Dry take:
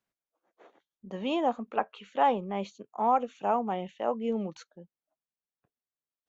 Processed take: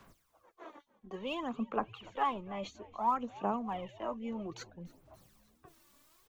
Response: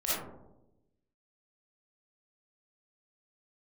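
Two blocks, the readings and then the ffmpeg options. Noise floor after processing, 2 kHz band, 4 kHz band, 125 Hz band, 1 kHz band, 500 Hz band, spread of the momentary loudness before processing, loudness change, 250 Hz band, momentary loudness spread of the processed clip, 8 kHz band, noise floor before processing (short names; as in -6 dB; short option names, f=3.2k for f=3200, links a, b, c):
-74 dBFS, -4.5 dB, -3.5 dB, -4.5 dB, -6.5 dB, -9.0 dB, 10 LU, -7.0 dB, -5.5 dB, 19 LU, n/a, under -85 dBFS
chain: -filter_complex "[0:a]lowshelf=f=91:g=10.5,acrossover=split=400|910[a][b][c];[b]acompressor=threshold=-41dB:ratio=6[d];[a][d][c]amix=inputs=3:normalize=0,equalizer=f=1.1k:w=4.4:g=8.5,aphaser=in_gain=1:out_gain=1:delay=3.5:decay=0.65:speed=0.59:type=sinusoidal,areverse,acompressor=mode=upward:threshold=-32dB:ratio=2.5,areverse,asplit=6[e][f][g][h][i][j];[f]adelay=288,afreqshift=-110,volume=-21.5dB[k];[g]adelay=576,afreqshift=-220,volume=-25.4dB[l];[h]adelay=864,afreqshift=-330,volume=-29.3dB[m];[i]adelay=1152,afreqshift=-440,volume=-33.1dB[n];[j]adelay=1440,afreqshift=-550,volume=-37dB[o];[e][k][l][m][n][o]amix=inputs=6:normalize=0,volume=-7dB"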